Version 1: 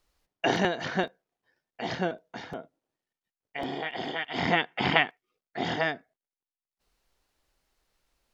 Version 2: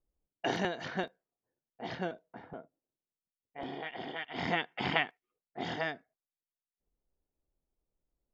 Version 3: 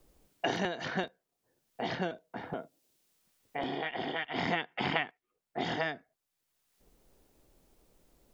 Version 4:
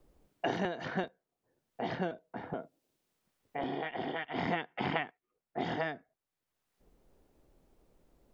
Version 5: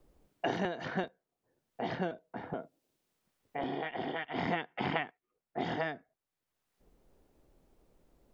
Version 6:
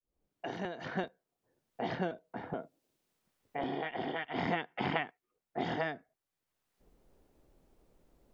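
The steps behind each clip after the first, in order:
level-controlled noise filter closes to 460 Hz, open at -25.5 dBFS; trim -7 dB
three bands compressed up and down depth 70%; trim +2 dB
treble shelf 2.6 kHz -10.5 dB
no audible change
fade-in on the opening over 1.13 s

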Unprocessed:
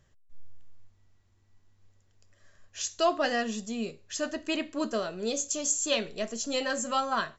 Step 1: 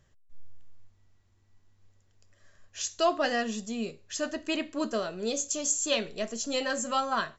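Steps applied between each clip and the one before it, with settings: no audible change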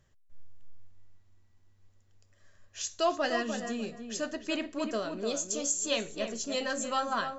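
filtered feedback delay 298 ms, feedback 24%, low-pass 1.9 kHz, level -6.5 dB; trim -2.5 dB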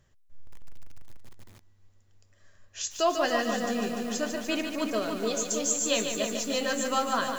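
bit-crushed delay 147 ms, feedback 80%, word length 8-bit, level -6.5 dB; trim +2.5 dB

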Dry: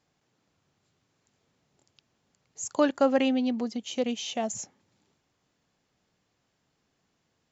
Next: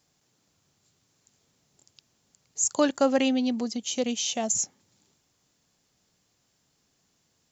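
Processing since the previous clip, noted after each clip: tone controls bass +2 dB, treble +12 dB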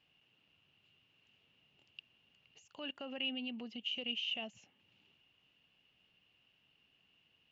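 compression 2:1, threshold -39 dBFS, peak gain reduction 12 dB; peak limiter -31 dBFS, peak gain reduction 10.5 dB; four-pole ladder low-pass 2.9 kHz, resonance 90%; trim +6.5 dB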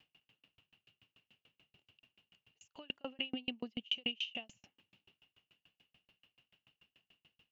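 sawtooth tremolo in dB decaying 6.9 Hz, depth 39 dB; trim +9 dB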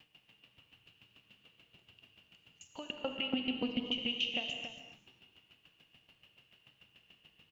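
peak limiter -30 dBFS, peak gain reduction 9.5 dB; echo from a far wall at 48 m, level -8 dB; gated-style reverb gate 280 ms flat, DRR 4 dB; trim +6.5 dB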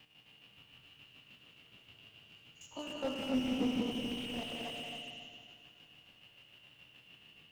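spectrogram pixelated in time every 50 ms; multi-head delay 91 ms, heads second and third, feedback 45%, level -6 dB; slew-rate limiter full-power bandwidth 11 Hz; trim +4.5 dB

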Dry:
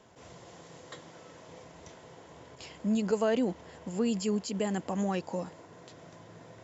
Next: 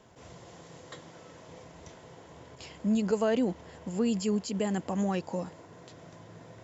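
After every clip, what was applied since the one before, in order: bass shelf 150 Hz +5 dB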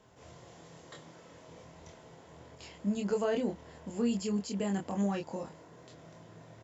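doubling 25 ms -3.5 dB; trim -5 dB

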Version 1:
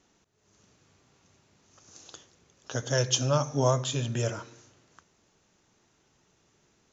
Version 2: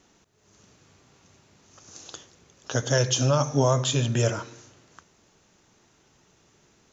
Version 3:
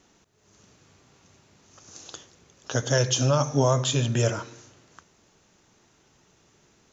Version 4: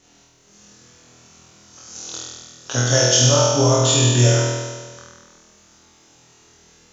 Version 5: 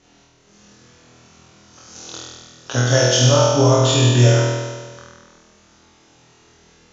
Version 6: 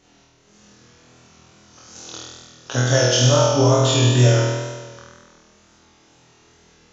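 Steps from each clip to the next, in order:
peak limiter -17 dBFS, peak gain reduction 7.5 dB; trim +6 dB
no audible change
peaking EQ 6.4 kHz +6 dB 2.1 oct; flutter echo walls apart 4.2 m, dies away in 1.5 s
distance through air 100 m; trim +2.5 dB
wow and flutter 29 cents; trim -1.5 dB

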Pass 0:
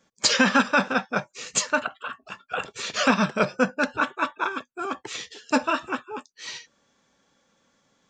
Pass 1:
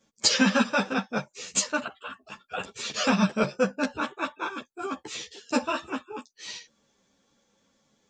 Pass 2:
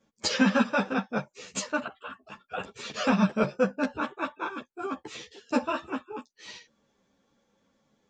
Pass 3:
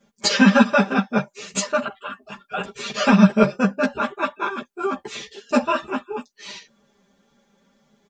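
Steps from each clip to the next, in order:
peaking EQ 1.4 kHz -6 dB 1.6 oct; three-phase chorus; trim +2.5 dB
treble shelf 3.5 kHz -11.5 dB
comb 5 ms, depth 92%; trim +5.5 dB

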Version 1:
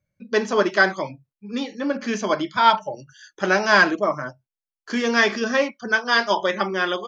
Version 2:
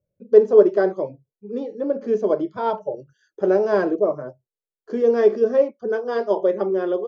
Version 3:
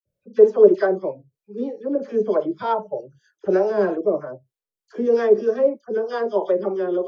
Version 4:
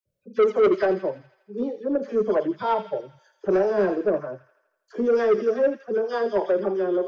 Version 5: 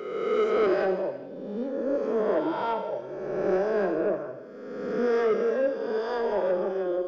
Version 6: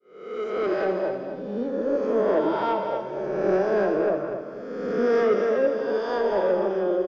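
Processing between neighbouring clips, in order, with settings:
FFT filter 280 Hz 0 dB, 430 Hz +14 dB, 880 Hz -5 dB, 2.2 kHz -18 dB; trim -3 dB
harmonic tremolo 3.2 Hz, depth 70%, crossover 520 Hz; phase dispersion lows, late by 57 ms, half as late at 1.7 kHz; trim +3 dB
saturation -13.5 dBFS, distortion -9 dB; feedback echo behind a high-pass 82 ms, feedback 60%, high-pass 2.1 kHz, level -8 dB
reverse spectral sustain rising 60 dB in 1.61 s; gated-style reverb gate 440 ms falling, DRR 9.5 dB; trim -7 dB
fade-in on the opening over 1.16 s; feedback delay 242 ms, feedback 30%, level -8 dB; trim +3 dB

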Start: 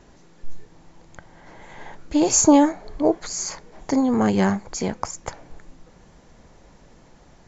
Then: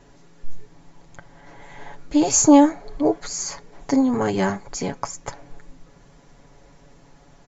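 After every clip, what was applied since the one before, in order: comb 7.1 ms, depth 62%; trim -1.5 dB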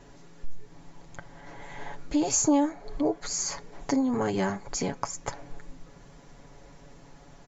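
compression 2:1, threshold -28 dBFS, peak gain reduction 11.5 dB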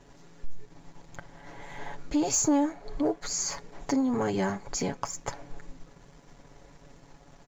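waveshaping leveller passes 1; trim -4 dB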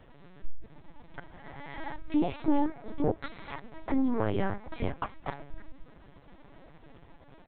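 LPC vocoder at 8 kHz pitch kept

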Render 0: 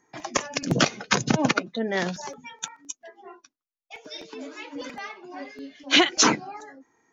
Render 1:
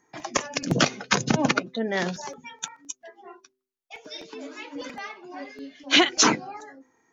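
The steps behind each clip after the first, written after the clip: de-hum 128.2 Hz, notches 4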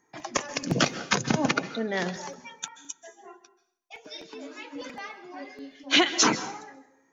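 plate-style reverb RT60 0.64 s, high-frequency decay 0.95×, pre-delay 120 ms, DRR 13.5 dB; trim -2.5 dB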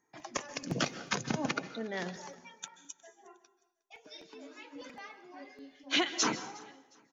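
feedback delay 360 ms, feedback 34%, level -24 dB; trim -8.5 dB

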